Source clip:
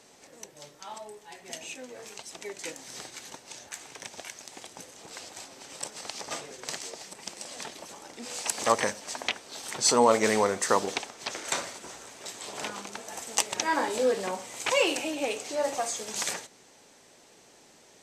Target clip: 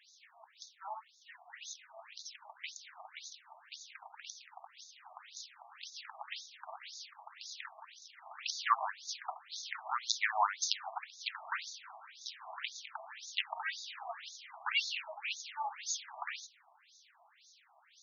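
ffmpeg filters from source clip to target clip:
ffmpeg -i in.wav -af "aeval=exprs='(mod(2.66*val(0)+1,2)-1)/2.66':channel_layout=same,afftfilt=real='re*between(b*sr/1024,850*pow(5000/850,0.5+0.5*sin(2*PI*1.9*pts/sr))/1.41,850*pow(5000/850,0.5+0.5*sin(2*PI*1.9*pts/sr))*1.41)':imag='im*between(b*sr/1024,850*pow(5000/850,0.5+0.5*sin(2*PI*1.9*pts/sr))/1.41,850*pow(5000/850,0.5+0.5*sin(2*PI*1.9*pts/sr))*1.41)':win_size=1024:overlap=0.75" out.wav

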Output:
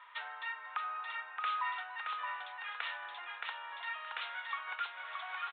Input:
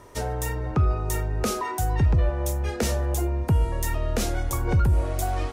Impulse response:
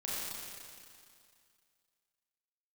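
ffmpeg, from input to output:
-filter_complex "[0:a]aecho=1:1:622|1244|1866|2488:0.668|0.194|0.0562|0.0163,asplit=2[link_01][link_02];[link_02]acompressor=threshold=-30dB:ratio=6,volume=2.5dB[link_03];[link_01][link_03]amix=inputs=2:normalize=0,asuperpass=centerf=2400:order=8:qfactor=0.57,aresample=8000,aresample=44100,volume=-6dB"

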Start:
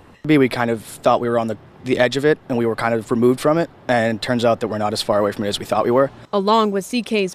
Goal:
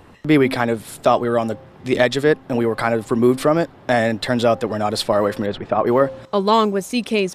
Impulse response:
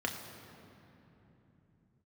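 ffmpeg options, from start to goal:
-filter_complex "[0:a]asettb=1/sr,asplit=3[link_01][link_02][link_03];[link_01]atrim=end=5.464[link_04];[link_02]atrim=start=5.46:end=5.87,asetpts=PTS-STARTPTS,afade=type=in:duration=0.004:curve=qsin,afade=type=out:start_time=0.406:duration=0.004:curve=qsin,lowpass=1900[link_05];[link_03]atrim=start=5.866[link_06];[link_04][link_05]acrossfade=duration=0.004:curve1=hsin:curve2=qsin[link_07];[link_07][link_06]acrossfade=duration=0.004:curve1=qsin:curve2=hsin,bandreject=frequency=264.8:width_type=h:width=4,bandreject=frequency=529.6:width_type=h:width=4,bandreject=frequency=794.4:width_type=h:width=4,bandreject=frequency=1059.2:width_type=h:width=4"

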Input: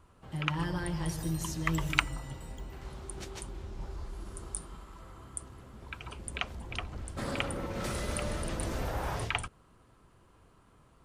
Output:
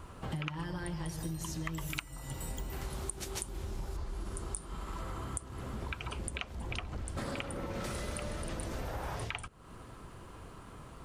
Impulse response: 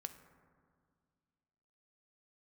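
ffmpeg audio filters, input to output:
-filter_complex "[0:a]asettb=1/sr,asplit=3[link_01][link_02][link_03];[link_01]atrim=end=1.774[link_04];[link_02]atrim=start=1.77:end=3.97,asetpts=PTS-STARTPTS,afade=type=in:duration=0.004:curve=qsin,afade=type=out:start_time=2.196:duration=0.004:curve=qsin,equalizer=frequency=13000:width_type=o:width=1.3:gain=13.5[link_05];[link_03]atrim=start=3.966[link_06];[link_04][link_05]acrossfade=duration=0.004:curve1=hsin:curve2=qsin[link_07];[link_07][link_06]acrossfade=duration=0.004:curve1=qsin:curve2=hsin,acompressor=threshold=-47dB:ratio=12,volume=12dB"

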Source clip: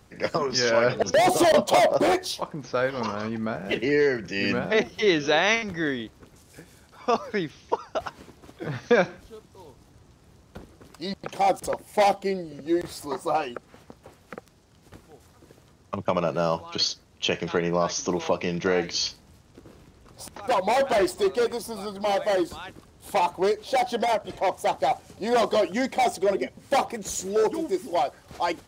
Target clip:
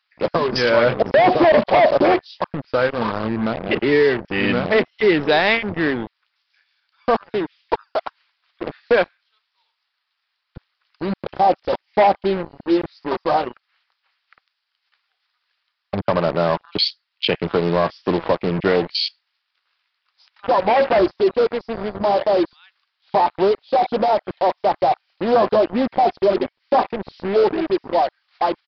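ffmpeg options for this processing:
ffmpeg -i in.wav -filter_complex "[0:a]asettb=1/sr,asplit=3[link_01][link_02][link_03];[link_01]atrim=end=7.214[link_04];[link_02]atrim=start=7.21:end=9.08,asetpts=PTS-STARTPTS,afade=type=in:duration=0.004:curve=qsin,afade=type=out:start_time=1.866:duration=0.004:curve=qsin,highpass=280[link_05];[link_03]atrim=start=9.076[link_06];[link_04][link_05]acrossfade=duration=0.004:curve1=hsin:curve2=qsin[link_07];[link_07][link_06]acrossfade=duration=0.004:curve1=qsin:curve2=hsin,afwtdn=0.0355,asplit=2[link_08][link_09];[link_09]acompressor=threshold=-35dB:ratio=6,volume=-1dB[link_10];[link_08][link_10]amix=inputs=2:normalize=0,asoftclip=type=hard:threshold=-13.5dB,acrossover=split=1300[link_11][link_12];[link_11]acrusher=bits=4:mix=0:aa=0.5[link_13];[link_13][link_12]amix=inputs=2:normalize=0,aresample=11025,aresample=44100,volume=5dB" out.wav

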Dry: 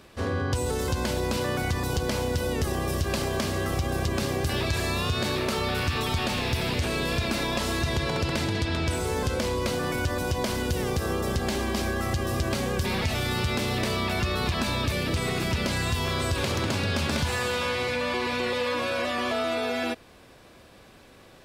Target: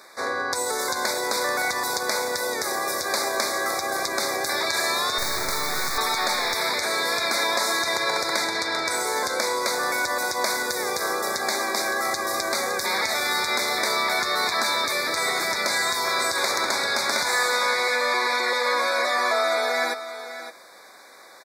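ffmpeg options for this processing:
ffmpeg -i in.wav -filter_complex "[0:a]highpass=720,asettb=1/sr,asplit=3[link_01][link_02][link_03];[link_01]atrim=end=5.184[link_04];[link_02]atrim=start=5.18:end=5.98,asetpts=PTS-STARTPTS,afade=type=in:duration=0.004:curve=qsin,afade=type=out:start_time=0.796:duration=0.004:curve=qsin,acrusher=bits=3:dc=4:mix=0:aa=0.000001[link_05];[link_03]atrim=start=5.976[link_06];[link_04][link_05]acrossfade=duration=0.004:curve1=hsin:curve2=qsin[link_07];[link_07][link_06]acrossfade=duration=0.004:curve1=qsin:curve2=hsin,asuperstop=centerf=2900:order=12:qfactor=2.4,aecho=1:1:564:0.251,volume=8.5dB" out.wav

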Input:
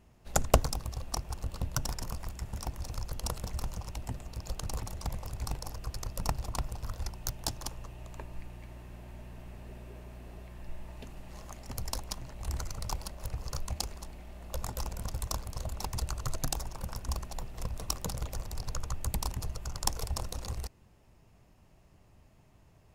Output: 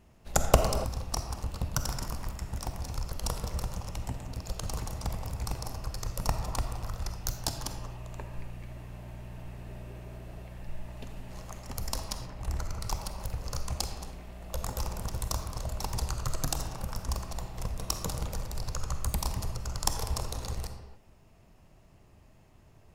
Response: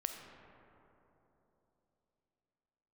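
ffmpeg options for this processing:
-filter_complex "[1:a]atrim=start_sample=2205,afade=type=out:start_time=0.35:duration=0.01,atrim=end_sample=15876[link_01];[0:a][link_01]afir=irnorm=-1:irlink=0,asplit=3[link_02][link_03][link_04];[link_02]afade=type=out:start_time=12.25:duration=0.02[link_05];[link_03]adynamicequalizer=threshold=0.001:dfrequency=2900:dqfactor=0.7:tfrequency=2900:tqfactor=0.7:attack=5:release=100:ratio=0.375:range=3.5:mode=cutabove:tftype=highshelf,afade=type=in:start_time=12.25:duration=0.02,afade=type=out:start_time=12.8:duration=0.02[link_06];[link_04]afade=type=in:start_time=12.8:duration=0.02[link_07];[link_05][link_06][link_07]amix=inputs=3:normalize=0,volume=3dB"

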